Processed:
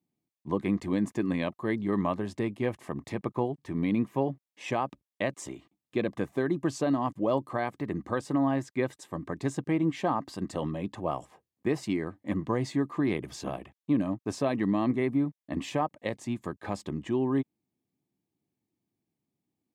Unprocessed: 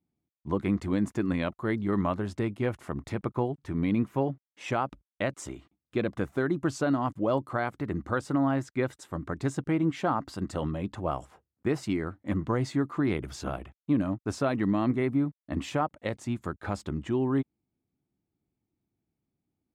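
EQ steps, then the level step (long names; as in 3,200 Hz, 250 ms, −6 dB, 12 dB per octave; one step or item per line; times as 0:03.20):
high-pass filter 130 Hz 12 dB per octave
Butterworth band-reject 1,400 Hz, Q 4.9
0.0 dB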